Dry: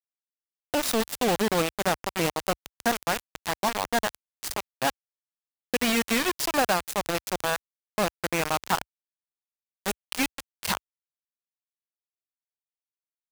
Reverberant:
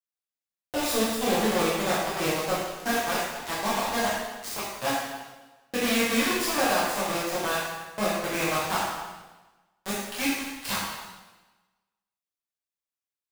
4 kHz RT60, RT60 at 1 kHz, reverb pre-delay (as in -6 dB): 1.1 s, 1.2 s, 4 ms